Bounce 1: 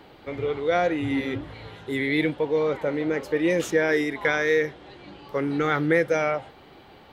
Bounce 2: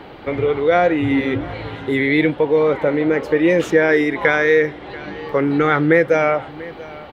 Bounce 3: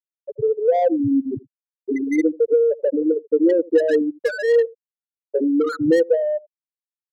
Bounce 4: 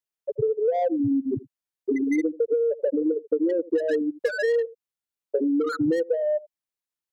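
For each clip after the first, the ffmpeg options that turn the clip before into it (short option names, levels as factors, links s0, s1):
-filter_complex "[0:a]aecho=1:1:688:0.0668,asplit=2[s0][s1];[s1]acompressor=threshold=0.0282:ratio=6,volume=1.12[s2];[s0][s2]amix=inputs=2:normalize=0,bass=f=250:g=-1,treble=f=4000:g=-11,volume=1.88"
-filter_complex "[0:a]afftfilt=real='re*gte(hypot(re,im),0.891)':imag='im*gte(hypot(re,im),0.891)':win_size=1024:overlap=0.75,acrossover=split=130|710[s0][s1][s2];[s1]aecho=1:1:81:0.0891[s3];[s2]asoftclip=type=tanh:threshold=0.0376[s4];[s0][s3][s4]amix=inputs=3:normalize=0"
-af "acompressor=threshold=0.0631:ratio=6,volume=1.41"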